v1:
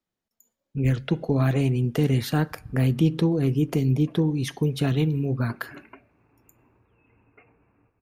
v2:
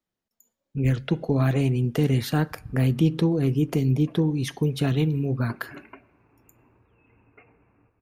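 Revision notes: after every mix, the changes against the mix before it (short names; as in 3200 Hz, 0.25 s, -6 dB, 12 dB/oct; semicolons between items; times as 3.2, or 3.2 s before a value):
background: send on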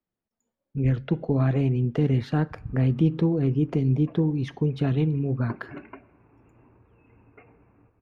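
background +4.5 dB; master: add tape spacing loss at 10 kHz 26 dB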